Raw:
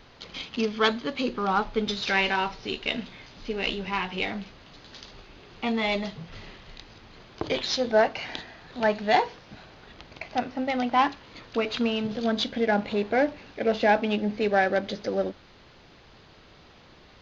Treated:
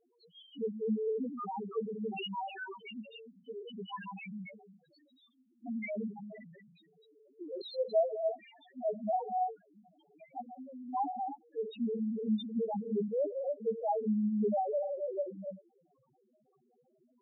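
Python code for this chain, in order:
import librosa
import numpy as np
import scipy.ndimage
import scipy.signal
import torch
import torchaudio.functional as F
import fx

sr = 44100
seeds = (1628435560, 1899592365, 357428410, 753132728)

y = fx.spec_erase(x, sr, start_s=3.07, length_s=0.69, low_hz=500.0, high_hz=2900.0)
y = fx.formant_cascade(y, sr, vowel='i', at=(5.02, 5.65), fade=0.02)
y = fx.rev_gated(y, sr, seeds[0], gate_ms=310, shape='rising', drr_db=2.5)
y = fx.env_flanger(y, sr, rest_ms=9.5, full_db=-21.0)
y = scipy.signal.sosfilt(scipy.signal.butter(2, 190.0, 'highpass', fs=sr, output='sos'), y)
y = fx.level_steps(y, sr, step_db=13, at=(10.4, 10.9))
y = fx.spec_topn(y, sr, count=1)
y = fx.sustainer(y, sr, db_per_s=38.0, at=(6.23, 7.62))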